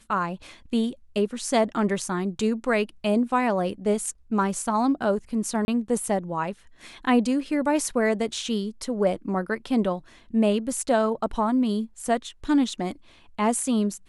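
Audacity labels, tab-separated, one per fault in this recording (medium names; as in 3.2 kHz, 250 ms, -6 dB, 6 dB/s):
5.650000	5.680000	dropout 30 ms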